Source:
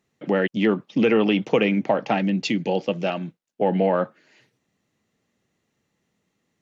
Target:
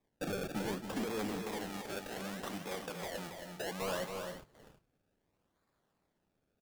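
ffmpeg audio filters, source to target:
-filter_complex "[0:a]acompressor=threshold=-33dB:ratio=6,asoftclip=type=tanh:threshold=-39dB,bass=f=250:g=-4,treble=f=4k:g=13,alimiter=level_in=11dB:limit=-24dB:level=0:latency=1:release=46,volume=-11dB,afwtdn=0.00178,acrusher=samples=30:mix=1:aa=0.000001:lfo=1:lforange=30:lforate=0.66,asettb=1/sr,asplit=3[a][b][c];[a]atrim=end=1.424[d];[b]atrim=start=1.42:end=3.82,asetpts=PTS-STARTPTS,afade=t=in:d=0.004:c=qsin,afade=t=out:st=2.396:d=0.004:c=qsin,lowshelf=f=370:g=-9[e];[c]atrim=start=3.816[f];[d][e]acrossfade=d=0.004:c1=hsin:c2=qsin[g];[g][f]acrossfade=d=0.004:c1=qsin:c2=hsin,aecho=1:1:175|276|326|349:0.126|0.473|0.15|0.237,volume=6.5dB"

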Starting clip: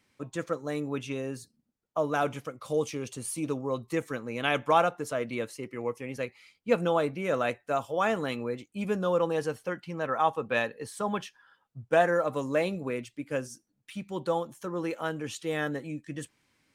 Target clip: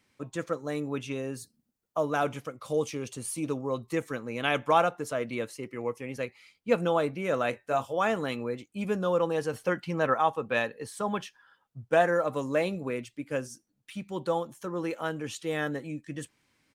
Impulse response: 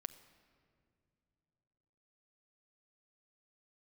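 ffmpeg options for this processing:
-filter_complex "[0:a]asettb=1/sr,asplit=3[a][b][c];[a]atrim=end=1.374[d];[b]atrim=start=1.37:end=2.05,asetpts=PTS-STARTPTS,afade=t=in:d=0.004:c=qsin,afade=t=out:st=0.676:d=0.004:c=qsin,highshelf=f=8.4k:g=8[e];[c]atrim=start=2.046[f];[d][e]acrossfade=d=0.004:c1=hsin:c2=qsin[g];[g][f]acrossfade=d=0.004:c1=qsin:c2=hsin,asplit=3[h][i][j];[h]afade=t=out:st=7.52:d=0.02[k];[i]asplit=2[l][m];[m]adelay=23,volume=-7.5dB[n];[l][n]amix=inputs=2:normalize=0,afade=t=in:st=7.52:d=0.02,afade=t=out:st=7.93:d=0.02[o];[j]afade=t=in:st=7.93:d=0.02[p];[k][o][p]amix=inputs=3:normalize=0,asettb=1/sr,asplit=3[q][r][s];[q]atrim=end=9.534[t];[r]atrim=start=9.53:end=10.14,asetpts=PTS-STARTPTS,afade=t=in:d=0.004:c=qsin,afade=t=out:st=0.606:d=0.004:c=qsin,acontrast=31[u];[s]atrim=start=10.136[v];[t][u]acrossfade=d=0.004:c1=hsin:c2=qsin[w];[w][v]acrossfade=d=0.004:c1=qsin:c2=hsin"

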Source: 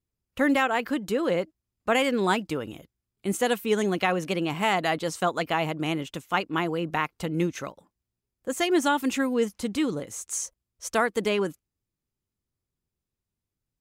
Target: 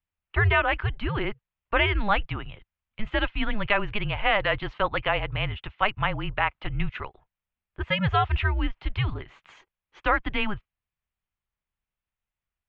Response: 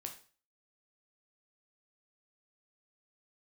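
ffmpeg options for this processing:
-af "asetrate=48000,aresample=44100,highpass=f=170:t=q:w=0.5412,highpass=f=170:t=q:w=1.307,lowpass=f=3.3k:t=q:w=0.5176,lowpass=f=3.3k:t=q:w=0.7071,lowpass=f=3.3k:t=q:w=1.932,afreqshift=-210,equalizer=f=270:w=0.66:g=-12.5,volume=5dB"

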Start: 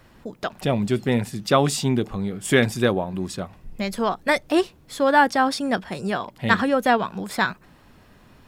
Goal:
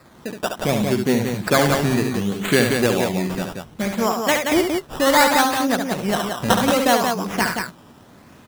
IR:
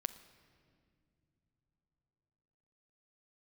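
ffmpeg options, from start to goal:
-filter_complex "[0:a]highpass=110,asplit=2[a][b];[b]acompressor=threshold=-28dB:ratio=6,volume=-1dB[c];[a][c]amix=inputs=2:normalize=0,acrusher=samples=14:mix=1:aa=0.000001:lfo=1:lforange=14:lforate=0.67,aecho=1:1:69.97|177.8:0.501|0.562,volume=-1dB"

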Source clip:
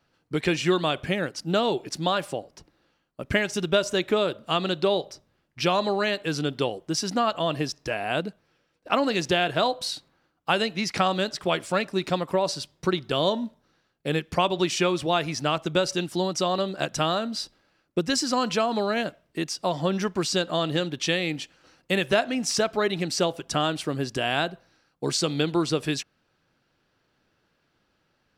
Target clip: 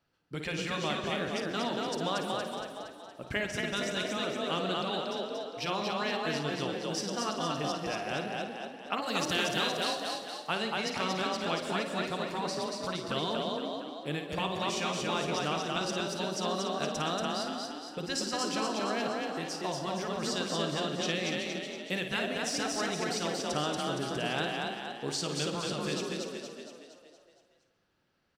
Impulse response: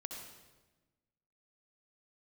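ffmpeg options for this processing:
-filter_complex "[0:a]asettb=1/sr,asplit=3[a][b][c];[a]atrim=end=9.024[d];[b]atrim=start=9.02:end=9.77,asetpts=PTS-STARTPTS,afade=t=in:d=0.004:c=qsin,afade=t=out:st=0.746:d=0.004:c=qsin,aemphasis=mode=production:type=50kf[e];[c]atrim=start=9.766[f];[d][e]acrossfade=d=0.004:c1=hsin:c2=qsin[g];[g][f]acrossfade=d=0.004:c1=qsin:c2=hsin,asplit=8[h][i][j][k][l][m][n][o];[i]adelay=233,afreqshift=32,volume=-3dB[p];[j]adelay=466,afreqshift=64,volume=-8.5dB[q];[k]adelay=699,afreqshift=96,volume=-14dB[r];[l]adelay=932,afreqshift=128,volume=-19.5dB[s];[m]adelay=1165,afreqshift=160,volume=-25.1dB[t];[n]adelay=1398,afreqshift=192,volume=-30.6dB[u];[o]adelay=1631,afreqshift=224,volume=-36.1dB[v];[h][p][q][r][s][t][u][v]amix=inputs=8:normalize=0,asplit=2[w][x];[1:a]atrim=start_sample=2205,adelay=54[y];[x][y]afir=irnorm=-1:irlink=0,volume=-4.5dB[z];[w][z]amix=inputs=2:normalize=0,afftfilt=real='re*lt(hypot(re,im),0.562)':imag='im*lt(hypot(re,im),0.562)':win_size=1024:overlap=0.75,volume=-8.5dB"

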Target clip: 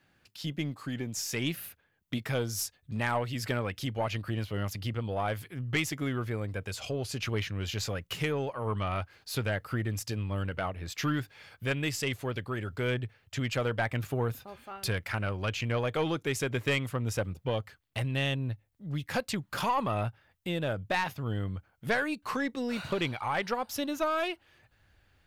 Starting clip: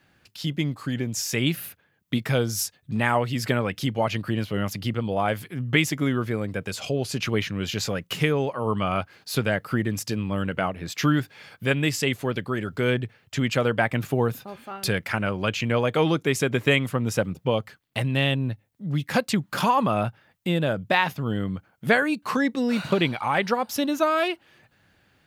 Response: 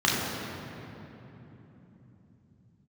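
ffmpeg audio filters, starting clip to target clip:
-af "asubboost=boost=9:cutoff=58,aeval=exprs='(tanh(5.01*val(0)+0.2)-tanh(0.2))/5.01':c=same,volume=-5.5dB"

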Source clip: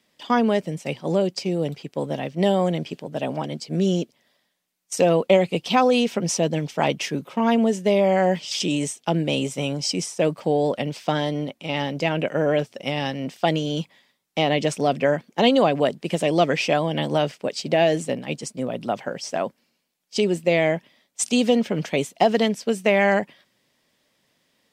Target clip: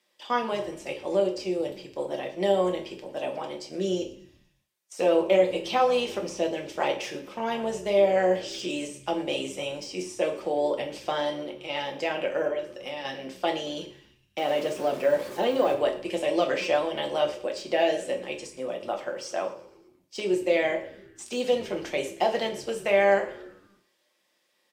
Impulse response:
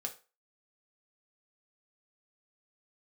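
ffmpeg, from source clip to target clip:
-filter_complex "[0:a]asettb=1/sr,asplit=3[a][b][c];[a]atrim=end=14.384[d];[b]atrim=start=14.38:end=15.74,asetpts=PTS-STARTPTS,afade=t=in:d=0.004:c=qsin,afade=t=out:st=1.356:d=0.004:c=qsin,aeval=exprs='val(0)+0.5*0.0447*sgn(val(0))':c=same[e];[c]atrim=start=15.736[f];[d][e]acrossfade=d=0.004:c1=hsin:c2=qsin[g];[g][f]acrossfade=d=0.004:c1=qsin:c2=hsin,deesser=0.7,highpass=370,asettb=1/sr,asplit=3[h][i][j];[h]atrim=end=12.474[k];[i]atrim=start=12.47:end=13.05,asetpts=PTS-STARTPTS,afade=t=in:d=0.004:c=qsin,afade=t=out:st=0.576:d=0.004:c=qsin,acompressor=threshold=-30dB:ratio=3[l];[j]atrim=start=13.046[m];[k][l]acrossfade=d=0.004:c1=hsin:c2=qsin[n];[n][m]acrossfade=d=0.004:c1=qsin:c2=hsin,asplit=6[o][p][q][r][s][t];[p]adelay=115,afreqshift=-78,volume=-19.5dB[u];[q]adelay=230,afreqshift=-156,volume=-24.5dB[v];[r]adelay=345,afreqshift=-234,volume=-29.6dB[w];[s]adelay=460,afreqshift=-312,volume=-34.6dB[x];[t]adelay=575,afreqshift=-390,volume=-39.6dB[y];[o][u][v][w][x][y]amix=inputs=6:normalize=0[z];[1:a]atrim=start_sample=2205,asetrate=31752,aresample=44100[aa];[z][aa]afir=irnorm=-1:irlink=0,volume=-4.5dB"

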